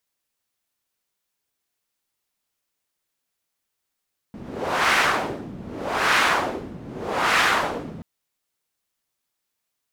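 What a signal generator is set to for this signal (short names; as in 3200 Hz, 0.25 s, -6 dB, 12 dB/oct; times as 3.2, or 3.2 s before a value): wind-like swept noise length 3.68 s, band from 200 Hz, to 1700 Hz, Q 1.3, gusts 3, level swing 19 dB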